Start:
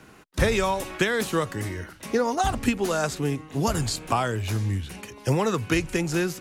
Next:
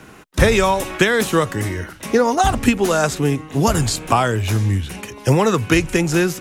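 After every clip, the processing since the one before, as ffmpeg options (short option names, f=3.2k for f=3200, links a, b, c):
-af "equalizer=f=4.5k:w=5.5:g=-3.5,volume=8dB"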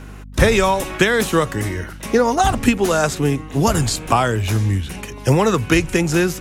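-af "aeval=exprs='val(0)+0.0178*(sin(2*PI*50*n/s)+sin(2*PI*2*50*n/s)/2+sin(2*PI*3*50*n/s)/3+sin(2*PI*4*50*n/s)/4+sin(2*PI*5*50*n/s)/5)':c=same"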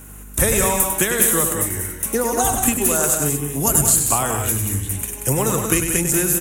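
-filter_complex "[0:a]aexciter=amount=11.5:drive=5.4:freq=7.2k,asplit=2[a][b];[b]aecho=0:1:99.13|183.7|224.5:0.447|0.447|0.316[c];[a][c]amix=inputs=2:normalize=0,volume=-6.5dB"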